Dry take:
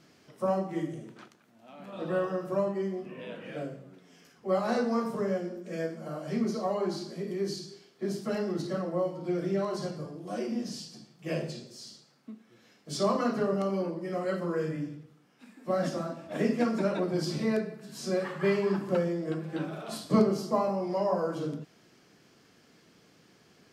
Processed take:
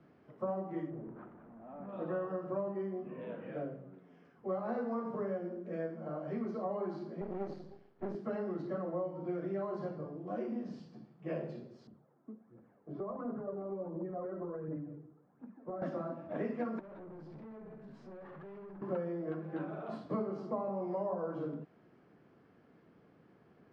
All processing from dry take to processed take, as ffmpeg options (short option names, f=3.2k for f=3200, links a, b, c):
-filter_complex "[0:a]asettb=1/sr,asplit=3[a][b][c];[a]atrim=end=0.904[d];[b]atrim=start=0.9:end=1.89,asetpts=PTS-STARTPTS,afade=t=in:d=0.004:c=qsin,afade=t=out:st=0.986:d=0.004:c=qsin,aeval=exprs='val(0)+0.5*0.00376*sgn(val(0))':c=same,lowpass=1.4k[e];[c]atrim=start=1.886[f];[d][e]acrossfade=d=0.004:c1=hsin:c2=qsin[g];[g][f]acrossfade=d=0.004:c1=qsin:c2=hsin,asettb=1/sr,asplit=3[h][i][j];[h]atrim=end=7.214[k];[i]atrim=start=7.21:end=8.15,asetpts=PTS-STARTPTS,afade=t=in:d=0.004:c=qsin,afade=t=out:st=0.936:d=0.004:c=qsin,lowshelf=f=180:g=8,aeval=exprs='max(val(0),0)':c=same[l];[j]atrim=start=8.146[m];[k][l]acrossfade=d=0.004:c1=hsin:c2=qsin[n];[n][m]acrossfade=d=0.004:c1=qsin:c2=hsin,asettb=1/sr,asplit=3[o][p][q];[o]atrim=end=11.874[r];[p]atrim=start=11.87:end=15.82,asetpts=PTS-STARTPTS,afade=t=in:d=0.004:c=qsin,afade=t=out:st=3.946:d=0.004:c=qsin,lowpass=1.1k,acompressor=threshold=-34dB:ratio=12:attack=3.2:release=140:knee=1:detection=peak,aphaser=in_gain=1:out_gain=1:delay=3.2:decay=0.5:speed=1.4:type=triangular[s];[q]atrim=start=15.816[t];[r][s]acrossfade=d=0.004:c1=hsin:c2=qsin[u];[u][t]acrossfade=d=0.004:c1=qsin:c2=hsin,asettb=1/sr,asplit=3[v][w][x];[v]atrim=end=16.794[y];[w]atrim=start=16.79:end=18.82,asetpts=PTS-STARTPTS,afade=t=in:d=0.004:c=qsin,afade=t=out:st=2.026:d=0.004:c=qsin,acompressor=threshold=-37dB:ratio=12:attack=3.2:release=140:knee=1:detection=peak,aeval=exprs='(tanh(178*val(0)+0.2)-tanh(0.2))/178':c=same[z];[x]atrim=start=18.816[aa];[y][z]acrossfade=d=0.004:c1=hsin:c2=qsin[ab];[ab][aa]acrossfade=d=0.004:c1=qsin:c2=hsin,lowpass=1.3k,acrossover=split=200|700[ac][ad][ae];[ac]acompressor=threshold=-48dB:ratio=4[af];[ad]acompressor=threshold=-36dB:ratio=4[ag];[ae]acompressor=threshold=-41dB:ratio=4[ah];[af][ag][ah]amix=inputs=3:normalize=0,volume=-1.5dB"